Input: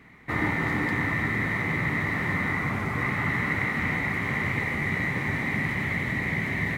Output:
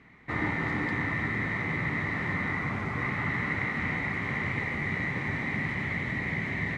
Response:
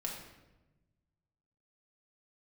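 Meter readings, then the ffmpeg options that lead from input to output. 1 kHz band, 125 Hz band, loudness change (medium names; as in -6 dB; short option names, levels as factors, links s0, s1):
-3.5 dB, -3.5 dB, -3.5 dB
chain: -af "lowpass=6100,volume=0.668"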